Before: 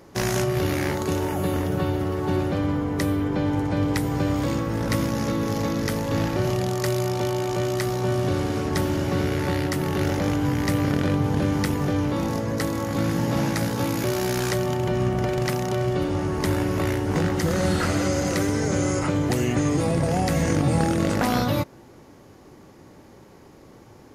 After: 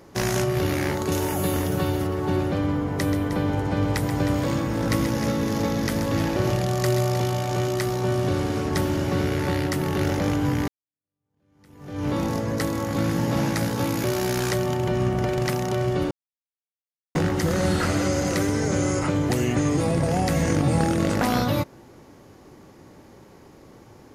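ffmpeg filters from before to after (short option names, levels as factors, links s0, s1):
-filter_complex "[0:a]asettb=1/sr,asplit=3[s0][s1][s2];[s0]atrim=end=1.124[s3];[s1]atrim=start=1.12:end=2.07,asetpts=PTS-STARTPTS,afade=t=in:d=0.004:c=qsin,afade=t=out:st=0.946:d=0.004:c=qsin,highshelf=f=4200:g=9.5[s4];[s2]atrim=start=2.066[s5];[s3][s4]acrossfade=d=0.004:c1=hsin:c2=qsin[s6];[s6][s5]acrossfade=d=0.004:c1=qsin:c2=hsin,asettb=1/sr,asplit=3[s7][s8][s9];[s7]atrim=end=2.744[s10];[s8]atrim=start=2.74:end=7.68,asetpts=PTS-STARTPTS,afade=t=in:d=0.004:c=qsin,afade=t=out:st=4.936:d=0.004:c=qsin,aecho=1:1:131|310:0.355|0.316,atrim=end_sample=217854[s11];[s9]atrim=start=7.676[s12];[s10][s11]acrossfade=d=0.004:c1=hsin:c2=qsin[s13];[s13][s12]acrossfade=d=0.004:c1=qsin:c2=hsin,asplit=4[s14][s15][s16][s17];[s14]atrim=end=10.68,asetpts=PTS-STARTPTS,afade=t=out:st=10.676:d=0.004:c=hsin[s18];[s15]atrim=start=10.68:end=16.11,asetpts=PTS-STARTPTS,afade=t=in:d=1.4:c=exp,afade=t=out:st=5.426:d=0.004:c=hsin[s19];[s16]atrim=start=16.11:end=17.15,asetpts=PTS-STARTPTS,volume=0[s20];[s17]atrim=start=17.15,asetpts=PTS-STARTPTS,afade=t=in:d=0.004:c=hsin[s21];[s18][s19][s20][s21]concat=n=4:v=0:a=1"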